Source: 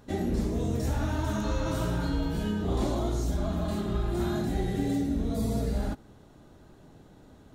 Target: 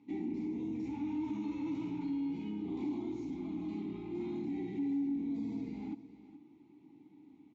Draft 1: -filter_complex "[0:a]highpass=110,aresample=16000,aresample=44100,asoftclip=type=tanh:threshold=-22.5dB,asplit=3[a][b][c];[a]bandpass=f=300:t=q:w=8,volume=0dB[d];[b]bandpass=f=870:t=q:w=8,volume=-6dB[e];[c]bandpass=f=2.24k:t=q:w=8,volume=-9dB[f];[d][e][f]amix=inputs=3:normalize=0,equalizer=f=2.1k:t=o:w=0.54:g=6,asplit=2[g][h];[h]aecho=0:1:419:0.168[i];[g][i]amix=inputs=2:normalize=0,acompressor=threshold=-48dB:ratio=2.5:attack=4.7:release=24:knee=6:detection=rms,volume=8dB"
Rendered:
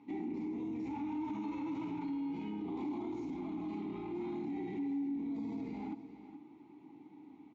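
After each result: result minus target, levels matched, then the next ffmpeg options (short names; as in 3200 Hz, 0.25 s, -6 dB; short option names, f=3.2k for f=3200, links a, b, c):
1000 Hz band +7.5 dB; compressor: peak gain reduction +5 dB
-filter_complex "[0:a]highpass=110,equalizer=f=970:t=o:w=2.5:g=-10.5,aresample=16000,aresample=44100,asoftclip=type=tanh:threshold=-22.5dB,asplit=3[a][b][c];[a]bandpass=f=300:t=q:w=8,volume=0dB[d];[b]bandpass=f=870:t=q:w=8,volume=-6dB[e];[c]bandpass=f=2.24k:t=q:w=8,volume=-9dB[f];[d][e][f]amix=inputs=3:normalize=0,equalizer=f=2.1k:t=o:w=0.54:g=6,asplit=2[g][h];[h]aecho=0:1:419:0.168[i];[g][i]amix=inputs=2:normalize=0,acompressor=threshold=-48dB:ratio=2.5:attack=4.7:release=24:knee=6:detection=rms,volume=8dB"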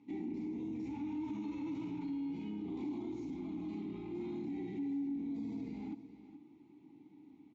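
compressor: peak gain reduction +3.5 dB
-filter_complex "[0:a]highpass=110,equalizer=f=970:t=o:w=2.5:g=-10.5,aresample=16000,aresample=44100,asoftclip=type=tanh:threshold=-22.5dB,asplit=3[a][b][c];[a]bandpass=f=300:t=q:w=8,volume=0dB[d];[b]bandpass=f=870:t=q:w=8,volume=-6dB[e];[c]bandpass=f=2.24k:t=q:w=8,volume=-9dB[f];[d][e][f]amix=inputs=3:normalize=0,equalizer=f=2.1k:t=o:w=0.54:g=6,asplit=2[g][h];[h]aecho=0:1:419:0.168[i];[g][i]amix=inputs=2:normalize=0,acompressor=threshold=-42dB:ratio=2.5:attack=4.7:release=24:knee=6:detection=rms,volume=8dB"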